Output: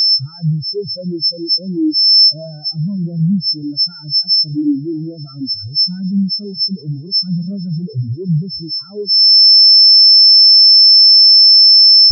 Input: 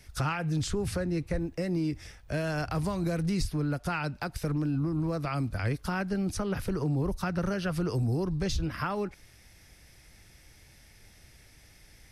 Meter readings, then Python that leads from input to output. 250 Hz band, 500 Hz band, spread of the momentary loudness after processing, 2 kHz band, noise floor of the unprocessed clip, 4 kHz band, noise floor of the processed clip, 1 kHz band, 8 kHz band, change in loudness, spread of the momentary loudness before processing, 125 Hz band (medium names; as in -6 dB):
+11.5 dB, +4.5 dB, 19 LU, under -15 dB, -57 dBFS, +39.5 dB, -33 dBFS, under -10 dB, no reading, +24.5 dB, 3 LU, +9.5 dB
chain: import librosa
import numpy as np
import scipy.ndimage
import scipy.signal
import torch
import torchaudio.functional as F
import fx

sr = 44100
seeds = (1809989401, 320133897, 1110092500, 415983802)

y = scipy.signal.sosfilt(scipy.signal.butter(2, 160.0, 'highpass', fs=sr, output='sos'), x)
y = fx.high_shelf(y, sr, hz=3100.0, db=-10.5)
y = y + 10.0 ** (-39.0 / 20.0) * np.sin(2.0 * np.pi * 5300.0 * np.arange(len(y)) / sr)
y = fx.fuzz(y, sr, gain_db=45.0, gate_db=-55.0)
y = fx.echo_feedback(y, sr, ms=120, feedback_pct=45, wet_db=-19.5)
y = fx.spectral_expand(y, sr, expansion=4.0)
y = F.gain(torch.from_numpy(y), 6.5).numpy()